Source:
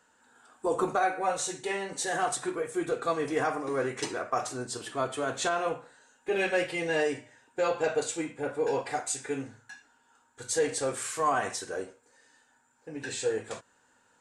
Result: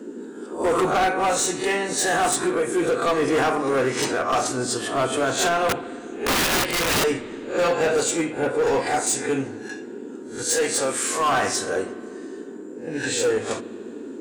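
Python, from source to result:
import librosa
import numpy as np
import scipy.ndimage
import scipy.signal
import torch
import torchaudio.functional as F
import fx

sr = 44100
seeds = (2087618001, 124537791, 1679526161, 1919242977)

y = fx.spec_swells(x, sr, rise_s=0.35)
y = fx.low_shelf(y, sr, hz=430.0, db=-10.0, at=(10.43, 11.32))
y = np.clip(y, -10.0 ** (-26.0 / 20.0), 10.0 ** (-26.0 / 20.0))
y = fx.dmg_noise_band(y, sr, seeds[0], low_hz=220.0, high_hz=440.0, level_db=-45.0)
y = fx.overflow_wrap(y, sr, gain_db=26.5, at=(5.69, 7.04))
y = fx.rev_spring(y, sr, rt60_s=2.8, pass_ms=(58,), chirp_ms=30, drr_db=16.0)
y = F.gain(torch.from_numpy(y), 9.0).numpy()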